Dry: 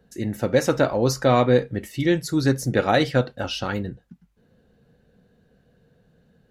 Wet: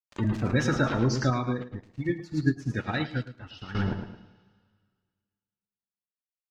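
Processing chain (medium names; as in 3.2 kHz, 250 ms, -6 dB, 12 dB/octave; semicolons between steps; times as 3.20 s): jump at every zero crossing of -32 dBFS; peaking EQ 560 Hz -14.5 dB 1.1 oct; bit crusher 5-bit; spectral gate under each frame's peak -20 dB strong; distance through air 140 m; feedback delay 109 ms, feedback 36%, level -7 dB; two-slope reverb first 0.53 s, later 1.9 s, from -16 dB, DRR 8.5 dB; 1.30–3.75 s: upward expansion 2.5:1, over -32 dBFS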